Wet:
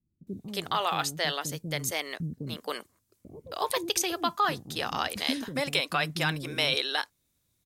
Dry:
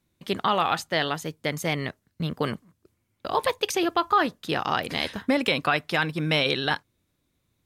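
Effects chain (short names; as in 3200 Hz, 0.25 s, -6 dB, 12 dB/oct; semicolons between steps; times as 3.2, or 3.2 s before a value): tone controls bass +1 dB, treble +11 dB; bands offset in time lows, highs 0.27 s, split 330 Hz; gain -5 dB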